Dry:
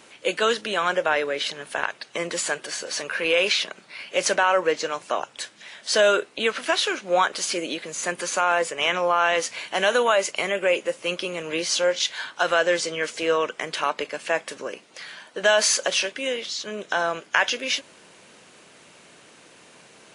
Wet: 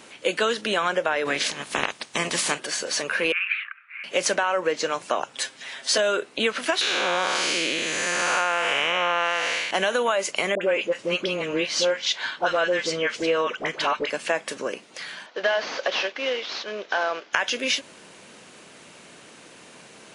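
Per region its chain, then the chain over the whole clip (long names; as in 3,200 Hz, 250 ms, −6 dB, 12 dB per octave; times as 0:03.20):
0:01.25–0:02.58: ceiling on every frequency bin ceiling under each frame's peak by 17 dB + notch filter 1,400 Hz, Q 17
0:03.32–0:04.04: elliptic band-pass filter 1,200–2,500 Hz, stop band 50 dB + frequency shifter +37 Hz
0:05.33–0:05.98: high-pass filter 210 Hz 6 dB per octave + comb filter 7.5 ms, depth 90%
0:06.81–0:09.71: spectrum smeared in time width 323 ms + parametric band 2,400 Hz +10.5 dB 2.5 octaves
0:10.55–0:14.10: low-pass filter 5,200 Hz + all-pass dispersion highs, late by 66 ms, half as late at 930 Hz
0:15.26–0:17.33: variable-slope delta modulation 32 kbit/s + high-pass filter 410 Hz + high-frequency loss of the air 76 metres
whole clip: downward compressor, threshold −22 dBFS; parametric band 230 Hz +2.5 dB; level +3 dB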